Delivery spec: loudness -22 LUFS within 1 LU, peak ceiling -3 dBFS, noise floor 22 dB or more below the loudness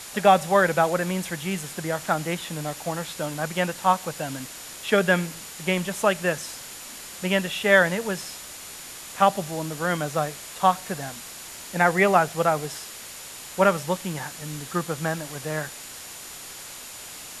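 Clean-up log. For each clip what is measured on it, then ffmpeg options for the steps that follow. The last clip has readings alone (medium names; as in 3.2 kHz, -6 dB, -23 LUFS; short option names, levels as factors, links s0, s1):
steady tone 7 kHz; tone level -47 dBFS; noise floor -40 dBFS; noise floor target -47 dBFS; loudness -24.5 LUFS; peak level -3.5 dBFS; loudness target -22.0 LUFS
-> -af "bandreject=f=7000:w=30"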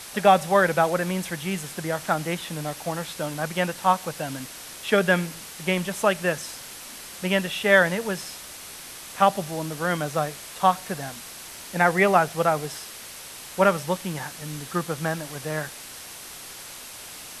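steady tone not found; noise floor -41 dBFS; noise floor target -47 dBFS
-> -af "afftdn=nr=6:nf=-41"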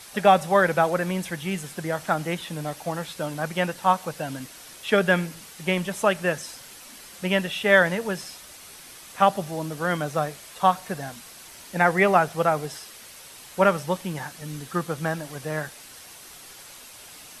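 noise floor -45 dBFS; noise floor target -47 dBFS
-> -af "afftdn=nr=6:nf=-45"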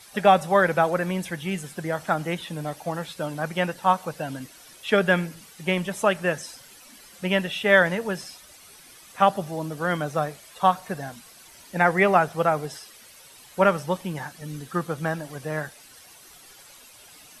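noise floor -50 dBFS; loudness -24.5 LUFS; peak level -3.5 dBFS; loudness target -22.0 LUFS
-> -af "volume=1.33,alimiter=limit=0.708:level=0:latency=1"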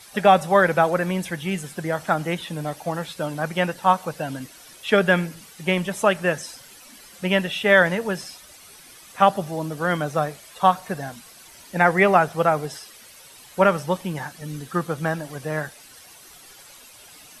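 loudness -22.0 LUFS; peak level -3.0 dBFS; noise floor -47 dBFS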